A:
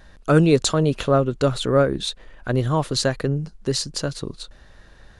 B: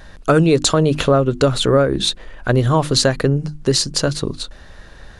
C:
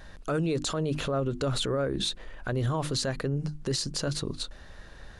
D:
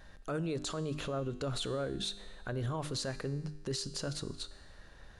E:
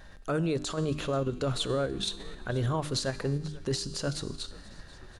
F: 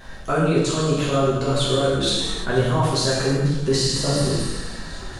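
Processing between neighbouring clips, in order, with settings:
hum notches 50/100/150/200/250/300/350 Hz; compression 4:1, threshold -19 dBFS, peak gain reduction 7 dB; trim +8.5 dB
peak limiter -13.5 dBFS, peak gain reduction 11 dB; trim -7 dB
feedback comb 100 Hz, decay 1.3 s, harmonics all, mix 60%
in parallel at +3 dB: level held to a coarse grid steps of 12 dB; on the sum: frequency-shifting echo 486 ms, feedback 60%, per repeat -100 Hz, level -20 dB
gated-style reverb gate 380 ms falling, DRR -7.5 dB; spectral replace 3.86–4.81 s, 1.4–8.2 kHz both; gain riding within 4 dB 0.5 s; trim +3.5 dB

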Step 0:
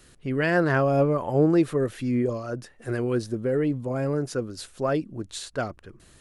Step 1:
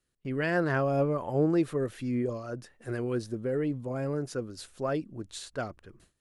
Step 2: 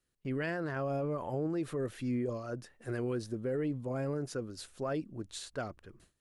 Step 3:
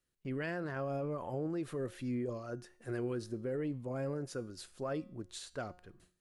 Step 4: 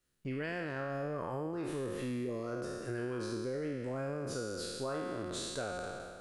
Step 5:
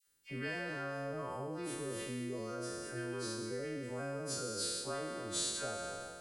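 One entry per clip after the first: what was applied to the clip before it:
gate with hold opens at -42 dBFS; trim -5.5 dB
peak limiter -25 dBFS, peak gain reduction 9.5 dB; trim -2 dB
feedback comb 180 Hz, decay 0.53 s, harmonics all, mix 50%; trim +2.5 dB
spectral sustain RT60 1.81 s; compression, threshold -36 dBFS, peak gain reduction 6.5 dB; trim +2 dB
partials quantised in pitch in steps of 2 st; phase dispersion lows, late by 70 ms, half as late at 1 kHz; trim -3 dB

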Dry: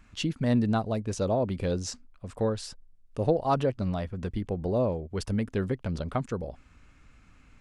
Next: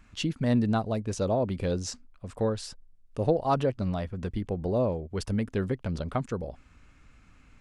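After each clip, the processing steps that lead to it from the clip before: no audible change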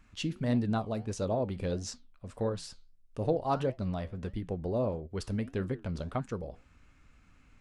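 flange 1.6 Hz, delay 6.5 ms, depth 7.2 ms, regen -79%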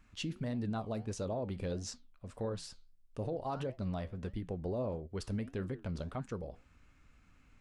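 peak limiter -26 dBFS, peak gain reduction 9.5 dB; trim -3 dB

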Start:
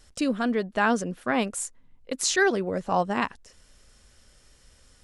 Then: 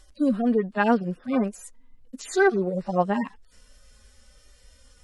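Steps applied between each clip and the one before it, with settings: harmonic-percussive separation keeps harmonic; trim +4 dB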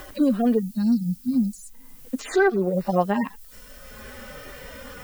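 time-frequency box 0.59–1.74 s, 270–3800 Hz -30 dB; added noise violet -56 dBFS; three bands compressed up and down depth 70%; trim +3 dB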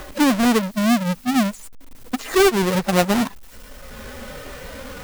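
square wave that keeps the level

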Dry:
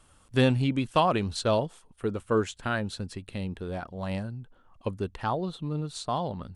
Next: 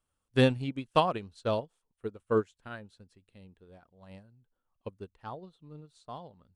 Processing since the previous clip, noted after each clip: peaking EQ 470 Hz +3 dB 0.31 oct; upward expansion 2.5:1, over -34 dBFS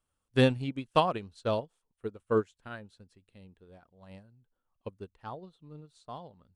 no audible change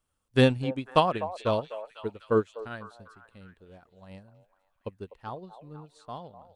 repeats whose band climbs or falls 249 ms, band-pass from 680 Hz, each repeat 0.7 oct, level -10 dB; trim +3 dB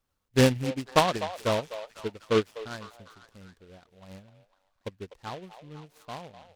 delay time shaken by noise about 2.3 kHz, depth 0.073 ms

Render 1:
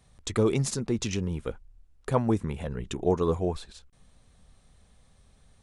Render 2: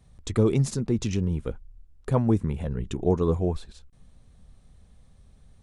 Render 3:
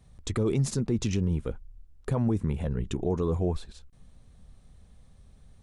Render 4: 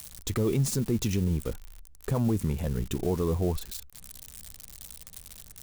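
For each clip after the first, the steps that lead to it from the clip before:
bass shelf 390 Hz +9.5 dB; trim -3.5 dB
peak limiter -17 dBFS, peak gain reduction 8 dB
zero-crossing glitches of -29.5 dBFS

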